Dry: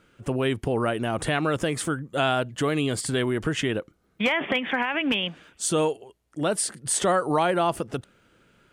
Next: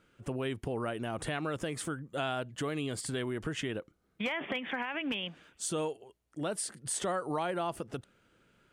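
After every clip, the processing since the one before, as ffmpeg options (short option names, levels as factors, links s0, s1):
-af "acompressor=threshold=0.0355:ratio=1.5,volume=0.447"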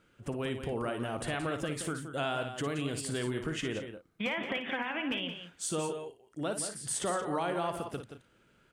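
-af "aecho=1:1:57|175|209:0.355|0.335|0.133"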